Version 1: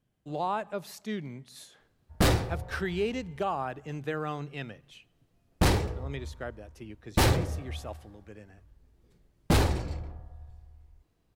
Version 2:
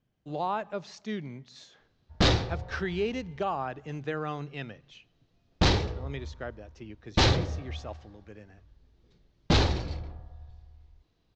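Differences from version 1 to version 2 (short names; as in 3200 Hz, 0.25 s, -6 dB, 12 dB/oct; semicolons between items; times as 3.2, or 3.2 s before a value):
background: add bell 3800 Hz +7.5 dB 0.79 oct; master: add steep low-pass 6600 Hz 48 dB/oct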